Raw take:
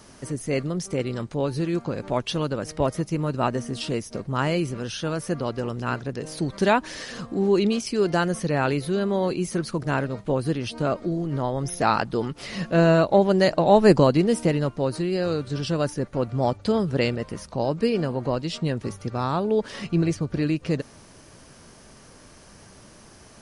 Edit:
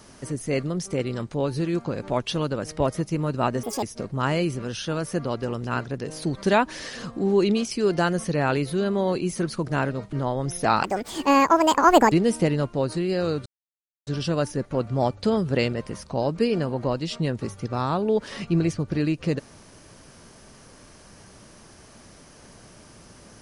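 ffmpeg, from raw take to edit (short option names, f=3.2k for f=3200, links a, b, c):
-filter_complex "[0:a]asplit=7[a][b][c][d][e][f][g];[a]atrim=end=3.634[h];[b]atrim=start=3.63:end=3.98,asetpts=PTS-STARTPTS,asetrate=78498,aresample=44100,atrim=end_sample=8671,asetpts=PTS-STARTPTS[i];[c]atrim=start=3.976:end=10.282[j];[d]atrim=start=11.298:end=12.014[k];[e]atrim=start=12.01:end=14.15,asetpts=PTS-STARTPTS,asetrate=73647,aresample=44100,atrim=end_sample=56511,asetpts=PTS-STARTPTS[l];[f]atrim=start=14.146:end=15.49,asetpts=PTS-STARTPTS,afade=t=out:st=1.34:d=0.004:c=hsin,apad=pad_dur=0.61[m];[g]atrim=start=15.49,asetpts=PTS-STARTPTS,afade=t=in:d=0.004:c=hsin[n];[h][i]acrossfade=d=0.004:c1=hsin:c2=hsin[o];[o][j]acrossfade=d=0.004:c1=hsin:c2=hsin[p];[p][k]acrossfade=d=0.004:c1=hsin:c2=hsin[q];[q][l]acrossfade=d=0.004:c1=hsin:c2=hsin[r];[m][n]concat=n=2:v=0:a=1[s];[r][s]acrossfade=d=0.004:c1=hsin:c2=hsin"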